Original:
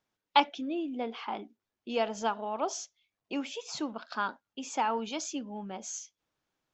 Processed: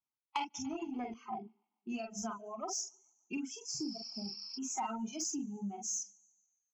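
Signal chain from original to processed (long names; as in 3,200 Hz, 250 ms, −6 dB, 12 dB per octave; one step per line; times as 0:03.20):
repeating echo 144 ms, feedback 53%, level −16.5 dB
noise reduction from a noise print of the clip's start 19 dB
dynamic equaliser 1,200 Hz, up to −5 dB, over −46 dBFS, Q 1.4
on a send at −3 dB: convolution reverb, pre-delay 45 ms
0:03.74–0:04.56: on the sum: healed spectral selection 830–5,700 Hz before
reverb reduction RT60 1.2 s
downward compressor 10 to 1, threshold −33 dBFS, peak gain reduction 14.5 dB
phaser with its sweep stopped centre 2,500 Hz, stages 8
soft clipping −28.5 dBFS, distortion −23 dB
0:00.54–0:01.14: every bin compressed towards the loudest bin 2 to 1
level +3.5 dB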